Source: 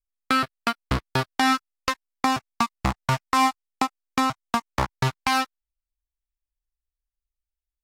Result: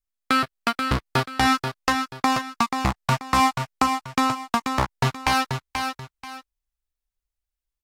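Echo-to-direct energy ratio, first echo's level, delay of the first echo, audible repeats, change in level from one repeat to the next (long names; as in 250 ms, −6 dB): −5.5 dB, −6.0 dB, 484 ms, 2, −10.5 dB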